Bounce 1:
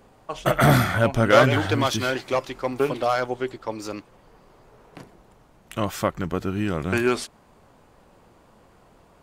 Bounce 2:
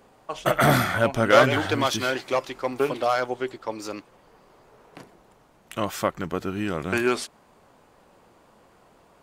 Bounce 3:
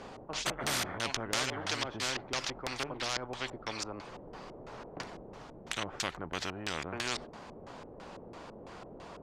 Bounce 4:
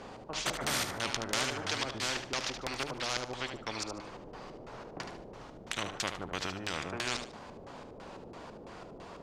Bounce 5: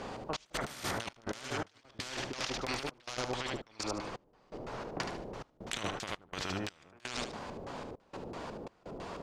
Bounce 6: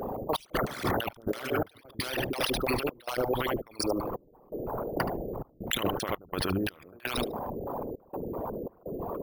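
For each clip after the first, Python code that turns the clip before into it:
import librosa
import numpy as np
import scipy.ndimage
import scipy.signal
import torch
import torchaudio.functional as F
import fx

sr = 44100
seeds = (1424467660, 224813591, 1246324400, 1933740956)

y1 = fx.low_shelf(x, sr, hz=150.0, db=-9.5)
y2 = fx.filter_lfo_lowpass(y1, sr, shape='square', hz=3.0, low_hz=470.0, high_hz=5400.0, q=1.2)
y2 = fx.spectral_comp(y2, sr, ratio=4.0)
y2 = y2 * 10.0 ** (-7.5 / 20.0)
y3 = fx.echo_feedback(y2, sr, ms=74, feedback_pct=27, wet_db=-8.5)
y4 = fx.over_compress(y3, sr, threshold_db=-38.0, ratio=-0.5)
y4 = fx.step_gate(y4, sr, bpm=83, pattern='xx.xxx.xx..xxx', floor_db=-24.0, edge_ms=4.5)
y4 = y4 * 10.0 ** (2.0 / 20.0)
y5 = fx.envelope_sharpen(y4, sr, power=3.0)
y5 = np.repeat(y5[::3], 3)[:len(y5)]
y5 = y5 * 10.0 ** (8.0 / 20.0)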